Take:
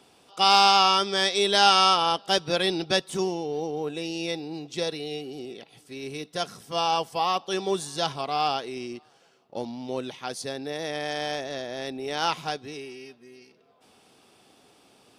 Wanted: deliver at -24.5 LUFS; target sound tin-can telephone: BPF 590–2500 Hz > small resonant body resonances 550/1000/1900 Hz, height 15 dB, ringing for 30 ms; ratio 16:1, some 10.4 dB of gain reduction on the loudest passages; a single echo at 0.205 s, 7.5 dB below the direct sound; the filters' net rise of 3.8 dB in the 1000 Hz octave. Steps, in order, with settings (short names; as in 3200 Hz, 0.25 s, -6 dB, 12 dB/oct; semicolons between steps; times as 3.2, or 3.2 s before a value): bell 1000 Hz +6.5 dB; compressor 16:1, threshold -21 dBFS; BPF 590–2500 Hz; echo 0.205 s -7.5 dB; small resonant body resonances 550/1000/1900 Hz, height 15 dB, ringing for 30 ms; gain -1.5 dB